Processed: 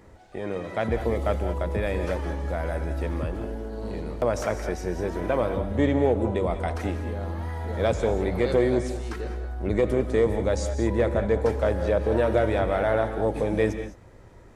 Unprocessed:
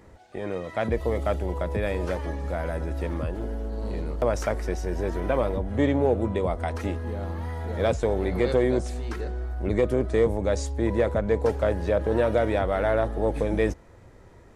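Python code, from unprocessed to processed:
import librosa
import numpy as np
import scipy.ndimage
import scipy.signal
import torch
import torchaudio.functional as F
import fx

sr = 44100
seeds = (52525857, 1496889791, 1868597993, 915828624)

y = fx.rev_gated(x, sr, seeds[0], gate_ms=230, shape='rising', drr_db=8.0)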